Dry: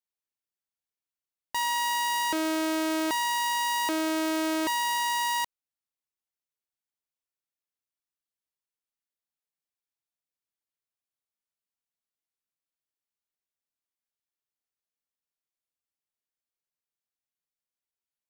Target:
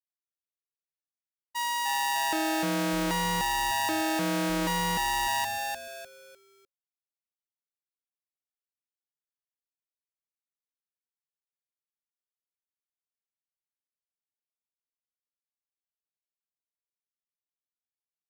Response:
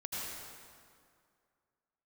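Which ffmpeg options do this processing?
-filter_complex "[0:a]agate=range=0.0224:threshold=0.0562:ratio=3:detection=peak,asplit=5[s0][s1][s2][s3][s4];[s1]adelay=301,afreqshift=-140,volume=0.708[s5];[s2]adelay=602,afreqshift=-280,volume=0.234[s6];[s3]adelay=903,afreqshift=-420,volume=0.0767[s7];[s4]adelay=1204,afreqshift=-560,volume=0.0254[s8];[s0][s5][s6][s7][s8]amix=inputs=5:normalize=0"

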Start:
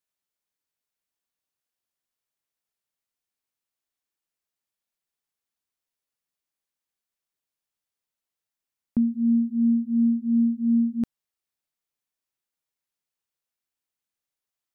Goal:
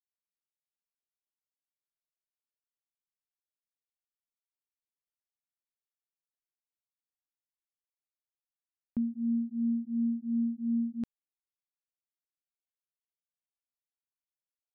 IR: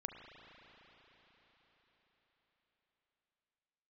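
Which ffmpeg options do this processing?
-af "anlmdn=2.51,crystalizer=i=4:c=0,volume=0.355"

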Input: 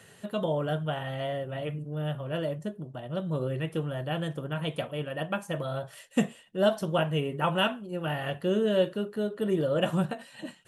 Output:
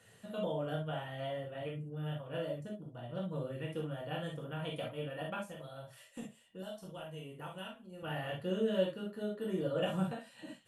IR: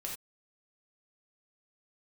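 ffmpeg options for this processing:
-filter_complex "[0:a]asettb=1/sr,asplit=3[s0][s1][s2];[s0]atrim=end=5.444[s3];[s1]atrim=start=5.44:end=8.03,asetpts=PTS-STARTPTS,afade=t=in:d=0.004:c=qsin,afade=t=out:st=2.586:d=0.004:c=qsin,acrossover=split=110|4300[s4][s5][s6];[s4]acompressor=threshold=0.00224:ratio=4[s7];[s5]acompressor=threshold=0.0126:ratio=4[s8];[s6]acompressor=threshold=0.00282:ratio=4[s9];[s7][s8][s9]amix=inputs=3:normalize=0[s10];[s2]atrim=start=8.026[s11];[s3][s10]acrossfade=d=0.004:c1=hsin:c2=qsin[s12];[s12][s11]acrossfade=d=0.004:c1=qsin:c2=hsin[s13];[1:a]atrim=start_sample=2205,asetrate=57330,aresample=44100[s14];[s13][s14]afir=irnorm=-1:irlink=0,volume=0.562"

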